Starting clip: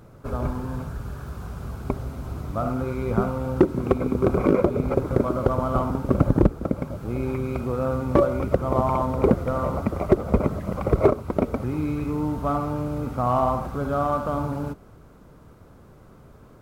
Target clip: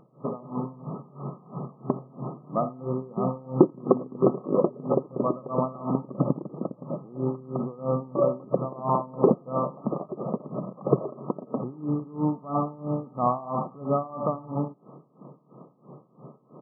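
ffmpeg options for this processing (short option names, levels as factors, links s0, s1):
-filter_complex "[0:a]afftfilt=real='re*between(b*sr/4096,120,1300)':imag='im*between(b*sr/4096,120,1300)':win_size=4096:overlap=0.75,asplit=2[s0][s1];[s1]acompressor=threshold=0.0224:ratio=12,volume=1.33[s2];[s0][s2]amix=inputs=2:normalize=0,aecho=1:1:86|172:0.0891|0.0258,aeval=exprs='val(0)*pow(10,-21*(0.5-0.5*cos(2*PI*3*n/s))/20)':c=same"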